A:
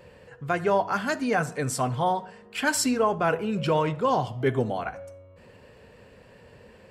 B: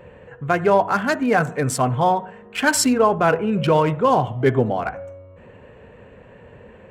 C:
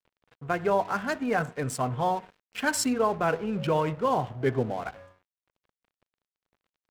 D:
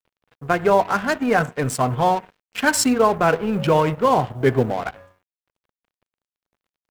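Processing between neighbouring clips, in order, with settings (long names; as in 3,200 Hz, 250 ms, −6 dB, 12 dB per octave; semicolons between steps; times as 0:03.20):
adaptive Wiener filter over 9 samples; level +7 dB
dead-zone distortion −36.5 dBFS; level −8 dB
mu-law and A-law mismatch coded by A; level +9 dB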